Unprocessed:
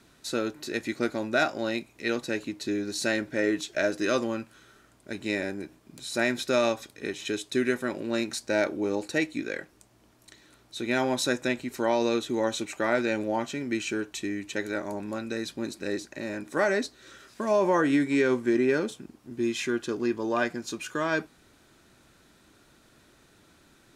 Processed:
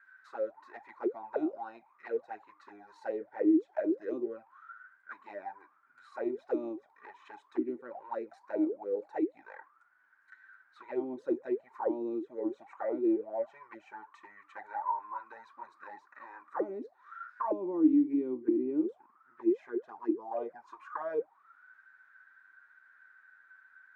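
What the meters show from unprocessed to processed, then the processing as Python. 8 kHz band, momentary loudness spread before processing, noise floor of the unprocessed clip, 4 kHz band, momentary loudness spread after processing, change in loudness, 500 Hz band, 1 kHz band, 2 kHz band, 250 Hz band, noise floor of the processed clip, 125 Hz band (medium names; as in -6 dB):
under -35 dB, 11 LU, -60 dBFS, under -30 dB, 20 LU, -5.5 dB, -7.5 dB, -6.5 dB, -19.0 dB, -3.5 dB, -67 dBFS, under -20 dB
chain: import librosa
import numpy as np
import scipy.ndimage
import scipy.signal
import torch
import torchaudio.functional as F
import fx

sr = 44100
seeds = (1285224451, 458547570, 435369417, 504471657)

y = fx.env_flanger(x, sr, rest_ms=10.6, full_db=-22.0)
y = fx.auto_wah(y, sr, base_hz=310.0, top_hz=1600.0, q=20.0, full_db=-23.0, direction='down')
y = fx.band_shelf(y, sr, hz=1300.0, db=9.5, octaves=1.7)
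y = y * 10.0 ** (9.0 / 20.0)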